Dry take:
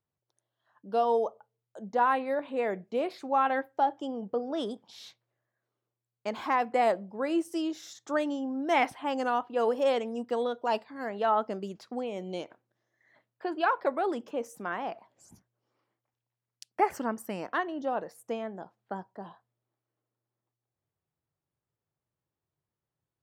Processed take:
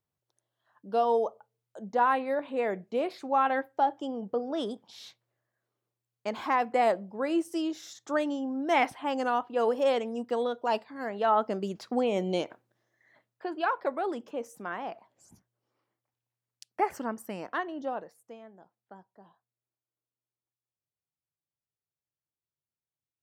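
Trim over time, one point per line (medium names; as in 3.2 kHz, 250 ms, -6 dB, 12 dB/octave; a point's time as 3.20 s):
11.20 s +0.5 dB
12.17 s +8.5 dB
13.50 s -2 dB
17.88 s -2 dB
18.32 s -13 dB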